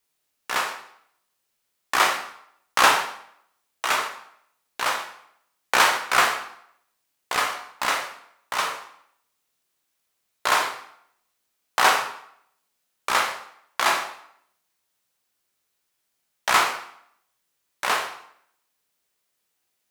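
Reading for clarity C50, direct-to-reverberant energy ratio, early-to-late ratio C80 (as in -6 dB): 7.5 dB, 2.5 dB, 10.5 dB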